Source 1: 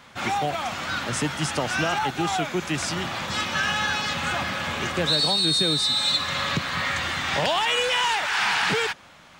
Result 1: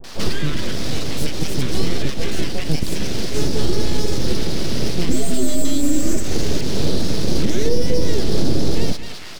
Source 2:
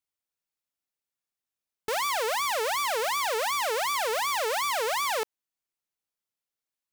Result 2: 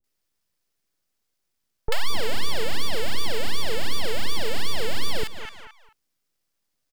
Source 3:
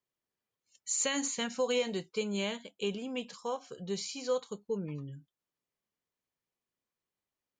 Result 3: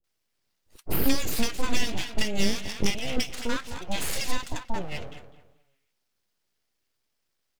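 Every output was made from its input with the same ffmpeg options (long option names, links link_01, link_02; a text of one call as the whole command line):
ffmpeg -i in.wav -filter_complex "[0:a]highpass=frequency=200:width=0.5412,highpass=frequency=200:width=1.3066,equalizer=frequency=2500:width_type=o:width=0.78:gain=13,asplit=2[link_01][link_02];[link_02]adelay=218,lowpass=frequency=1600:poles=1,volume=-11.5dB,asplit=2[link_03][link_04];[link_04]adelay=218,lowpass=frequency=1600:poles=1,volume=0.31,asplit=2[link_05][link_06];[link_06]adelay=218,lowpass=frequency=1600:poles=1,volume=0.31[link_07];[link_03][link_05][link_07]amix=inputs=3:normalize=0[link_08];[link_01][link_08]amix=inputs=2:normalize=0,aeval=exprs='abs(val(0))':channel_layout=same,acrossover=split=520[link_09][link_10];[link_10]acompressor=threshold=-38dB:ratio=10[link_11];[link_09][link_11]amix=inputs=2:normalize=0,acrossover=split=860[link_12][link_13];[link_13]adelay=40[link_14];[link_12][link_14]amix=inputs=2:normalize=0,adynamicequalizer=threshold=0.00251:dfrequency=1100:dqfactor=0.98:tfrequency=1100:tqfactor=0.98:attack=5:release=100:ratio=0.375:range=3:mode=cutabove:tftype=bell,alimiter=level_in=14.5dB:limit=-1dB:release=50:level=0:latency=1,volume=-3.5dB" out.wav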